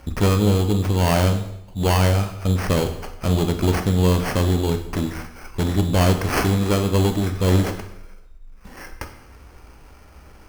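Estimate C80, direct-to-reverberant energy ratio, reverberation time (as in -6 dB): 12.0 dB, 6.0 dB, 0.80 s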